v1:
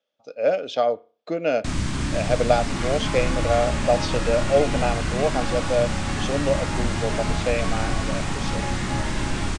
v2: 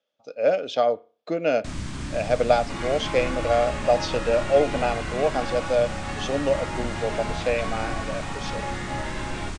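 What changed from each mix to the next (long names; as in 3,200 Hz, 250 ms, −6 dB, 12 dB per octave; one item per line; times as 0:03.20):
first sound −7.0 dB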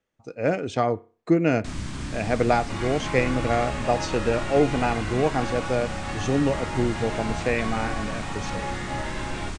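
speech: remove loudspeaker in its box 340–6,100 Hz, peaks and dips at 350 Hz −9 dB, 580 Hz +9 dB, 1,000 Hz −7 dB, 1,900 Hz −8 dB, 3,400 Hz +9 dB, 5,000 Hz +4 dB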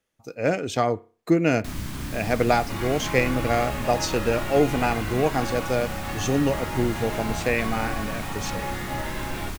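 speech: add high-shelf EQ 3,500 Hz +9 dB
master: remove Butterworth low-pass 9,100 Hz 48 dB per octave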